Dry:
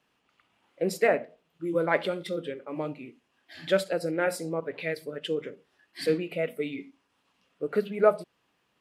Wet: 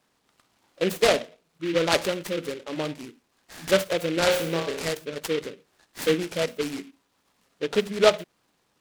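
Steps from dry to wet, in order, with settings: 4.14–4.87 s: flutter echo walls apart 5.1 m, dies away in 0.54 s; delay time shaken by noise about 2.3 kHz, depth 0.1 ms; trim +3 dB

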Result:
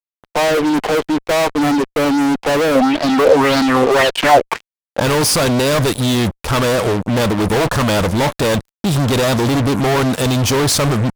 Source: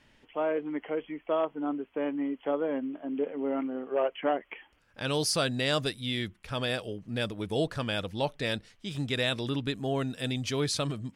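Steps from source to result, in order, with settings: ten-band graphic EQ 1 kHz +8 dB, 2 kHz -10 dB, 4 kHz -5 dB; fuzz box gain 46 dB, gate -49 dBFS; 2.75–5.00 s: sweeping bell 1.8 Hz 520–4700 Hz +11 dB

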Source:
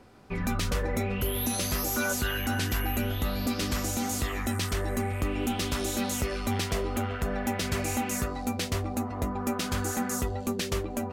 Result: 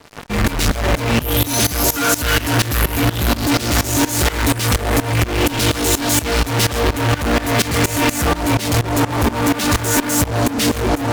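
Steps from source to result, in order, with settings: formant-preserving pitch shift +3 st; fuzz box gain 49 dB, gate -51 dBFS; tremolo saw up 4.2 Hz, depth 90%; trim +1.5 dB

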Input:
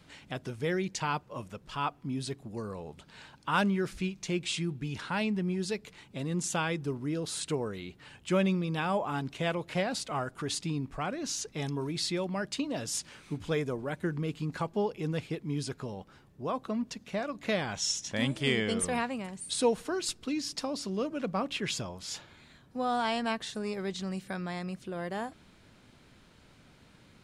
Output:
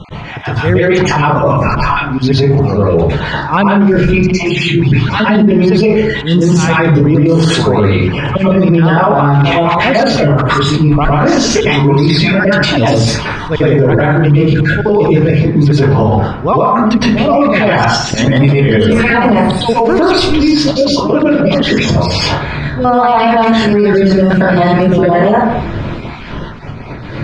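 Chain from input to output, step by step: random holes in the spectrogram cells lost 34%; bass shelf 140 Hz +4.5 dB; 3.99–4.69 s: level held to a coarse grid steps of 15 dB; slow attack 231 ms; distance through air 210 m; plate-style reverb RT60 0.56 s, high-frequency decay 0.45×, pre-delay 100 ms, DRR -10 dB; loudness maximiser +29.5 dB; trim -1 dB

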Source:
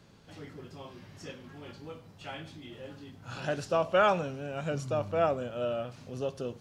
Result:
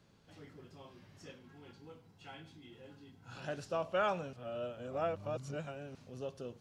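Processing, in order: 1.39–3.35 s: comb of notches 600 Hz; 4.33–5.95 s: reverse; trim -8.5 dB

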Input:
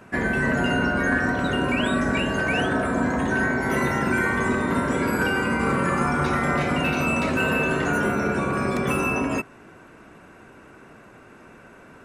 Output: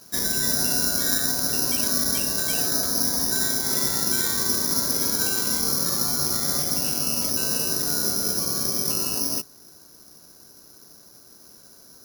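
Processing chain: low-pass 1.9 kHz 6 dB/octave, from 5.60 s 1 kHz; careless resampling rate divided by 8×, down none, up zero stuff; trim -9 dB

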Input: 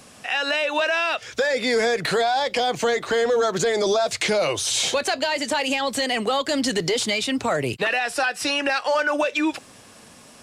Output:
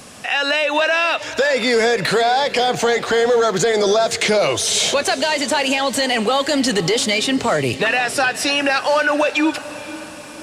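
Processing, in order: in parallel at -2 dB: peak limiter -22.5 dBFS, peak gain reduction 10.5 dB; on the sum: echo that smears into a reverb 510 ms, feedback 53%, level -15.5 dB; trim +2.5 dB

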